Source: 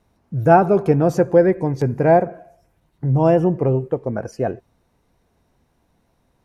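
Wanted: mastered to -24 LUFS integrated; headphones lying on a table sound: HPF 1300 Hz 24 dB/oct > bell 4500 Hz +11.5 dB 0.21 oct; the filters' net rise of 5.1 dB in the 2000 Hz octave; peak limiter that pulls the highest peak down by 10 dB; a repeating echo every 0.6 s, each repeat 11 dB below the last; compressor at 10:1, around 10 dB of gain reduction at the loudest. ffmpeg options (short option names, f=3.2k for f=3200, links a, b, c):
-af "equalizer=f=2k:t=o:g=8.5,acompressor=threshold=-17dB:ratio=10,alimiter=limit=-18.5dB:level=0:latency=1,highpass=f=1.3k:w=0.5412,highpass=f=1.3k:w=1.3066,equalizer=f=4.5k:t=o:w=0.21:g=11.5,aecho=1:1:600|1200|1800:0.282|0.0789|0.0221,volume=19dB"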